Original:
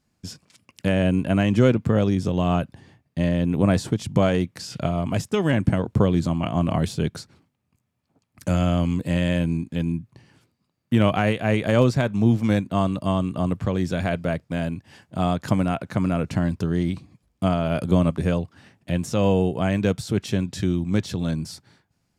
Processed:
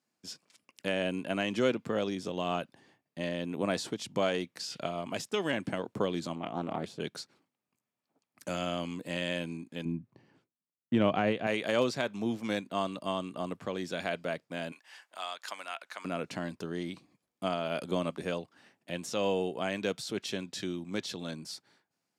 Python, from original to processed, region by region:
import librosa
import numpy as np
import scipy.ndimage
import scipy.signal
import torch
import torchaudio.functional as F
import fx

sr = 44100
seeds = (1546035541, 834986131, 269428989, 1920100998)

y = fx.chain(x, sr, fx.high_shelf(hz=2300.0, db=-11.0),
    fx.doppler_dist(depth_ms=0.26), at=(6.35, 7.0))
y = fx.chain(y, sr, fx.gate_hold(open_db=-45.0, close_db=-53.0, hold_ms=71.0, range_db=-21, attack_ms=1.4, release_ms=100.0),
    fx.lowpass(hz=8200.0, slope=12),
    fx.tilt_eq(slope=-3.0), at=(9.85, 11.47))
y = fx.chain(y, sr, fx.highpass(hz=1100.0, slope=12),
    fx.band_squash(depth_pct=40), at=(14.72, 16.05))
y = scipy.signal.sosfilt(scipy.signal.butter(2, 300.0, 'highpass', fs=sr, output='sos'), y)
y = fx.dynamic_eq(y, sr, hz=3900.0, q=0.84, threshold_db=-44.0, ratio=4.0, max_db=6)
y = F.gain(torch.from_numpy(y), -7.5).numpy()